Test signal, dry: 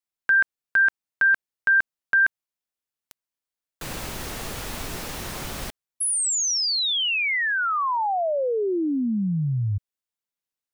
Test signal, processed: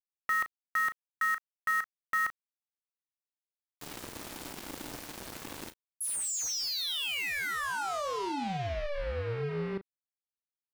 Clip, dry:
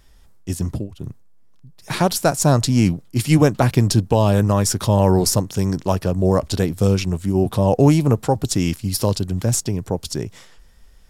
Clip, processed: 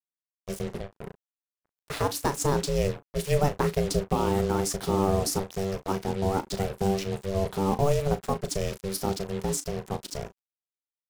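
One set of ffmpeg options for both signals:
ffmpeg -i in.wav -filter_complex "[0:a]aeval=exprs='val(0)*sin(2*PI*290*n/s)':channel_layout=same,acrusher=bits=4:mix=0:aa=0.5,asplit=2[link_01][link_02];[link_02]adelay=36,volume=-12dB[link_03];[link_01][link_03]amix=inputs=2:normalize=0,volume=-7dB" out.wav

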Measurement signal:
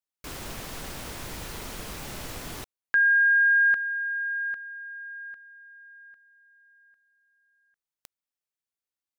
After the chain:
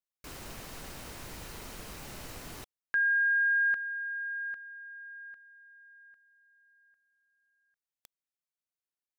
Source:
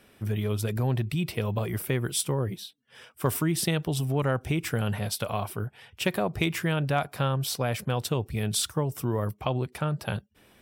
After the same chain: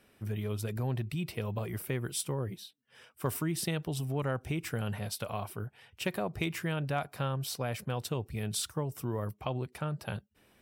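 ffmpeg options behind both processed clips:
ffmpeg -i in.wav -af "bandreject=frequency=3400:width=24,volume=-6.5dB" out.wav

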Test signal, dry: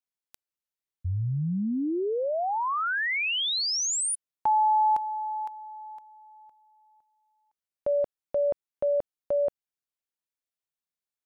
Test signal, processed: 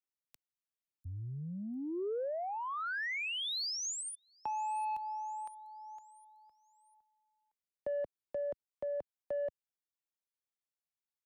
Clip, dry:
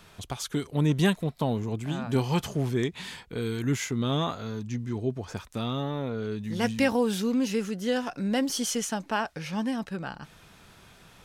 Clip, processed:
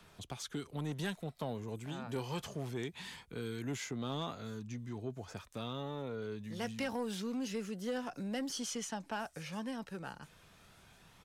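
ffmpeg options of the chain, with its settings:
ffmpeg -i in.wav -filter_complex "[0:a]aphaser=in_gain=1:out_gain=1:delay=2.3:decay=0.21:speed=0.25:type=triangular,acrossover=split=6900[link_01][link_02];[link_01]asoftclip=type=tanh:threshold=-19dB[link_03];[link_02]aecho=1:1:698|1396|2094|2792:0.15|0.0643|0.0277|0.0119[link_04];[link_03][link_04]amix=inputs=2:normalize=0,acrossover=split=92|330|7900[link_05][link_06][link_07][link_08];[link_05]acompressor=threshold=-59dB:ratio=2[link_09];[link_06]acompressor=threshold=-36dB:ratio=2[link_10];[link_07]acompressor=threshold=-28dB:ratio=2.5[link_11];[link_08]acompressor=threshold=-52dB:ratio=2.5[link_12];[link_09][link_10][link_11][link_12]amix=inputs=4:normalize=0,volume=-8dB" out.wav

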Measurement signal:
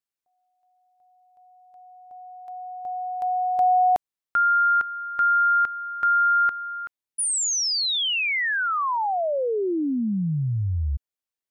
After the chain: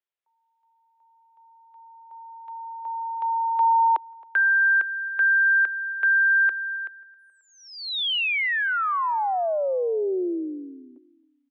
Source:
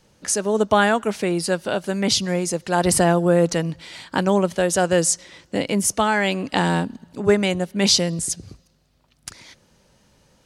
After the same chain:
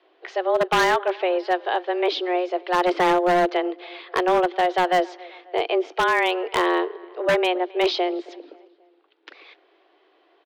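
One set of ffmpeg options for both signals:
ffmpeg -i in.wav -filter_complex "[0:a]highpass=frequency=150:width_type=q:width=0.5412,highpass=frequency=150:width_type=q:width=1.307,lowpass=frequency=3500:width_type=q:width=0.5176,lowpass=frequency=3500:width_type=q:width=0.7071,lowpass=frequency=3500:width_type=q:width=1.932,afreqshift=180,asplit=2[link_01][link_02];[link_02]adelay=269,lowpass=frequency=2800:poles=1,volume=-23dB,asplit=2[link_03][link_04];[link_04]adelay=269,lowpass=frequency=2800:poles=1,volume=0.5,asplit=2[link_05][link_06];[link_06]adelay=269,lowpass=frequency=2800:poles=1,volume=0.5[link_07];[link_01][link_03][link_05][link_07]amix=inputs=4:normalize=0,aeval=exprs='0.251*(abs(mod(val(0)/0.251+3,4)-2)-1)':channel_layout=same" out.wav

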